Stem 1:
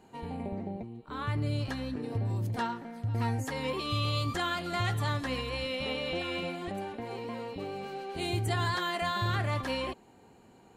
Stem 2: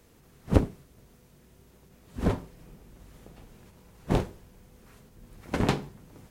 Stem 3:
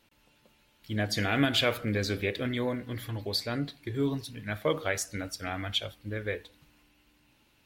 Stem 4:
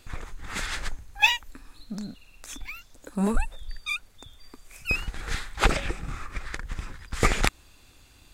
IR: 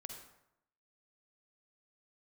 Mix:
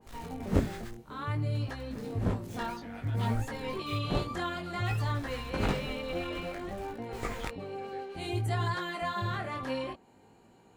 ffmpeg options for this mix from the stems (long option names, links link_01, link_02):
-filter_complex "[0:a]volume=1dB[link_01];[1:a]volume=-2.5dB[link_02];[2:a]afwtdn=0.0112,adelay=1650,volume=-16dB[link_03];[3:a]acrusher=bits=5:mix=0:aa=0.000001,volume=-10.5dB,asplit=3[link_04][link_05][link_06];[link_04]atrim=end=0.95,asetpts=PTS-STARTPTS,afade=type=out:start_time=0.946:duration=0.004:curve=hsin[link_07];[link_05]atrim=start=0.95:end=1.54,asetpts=PTS-STARTPTS,volume=0[link_08];[link_06]atrim=start=1.54,asetpts=PTS-STARTPTS,afade=type=in:duration=0.004:curve=hsin[link_09];[link_07][link_08][link_09]concat=n=3:v=0:a=1[link_10];[link_01][link_02][link_03][link_10]amix=inputs=4:normalize=0,flanger=delay=17.5:depth=5.6:speed=0.57,adynamicequalizer=threshold=0.00316:dfrequency=2200:dqfactor=0.7:tfrequency=2200:tqfactor=0.7:attack=5:release=100:ratio=0.375:range=2.5:mode=cutabove:tftype=highshelf"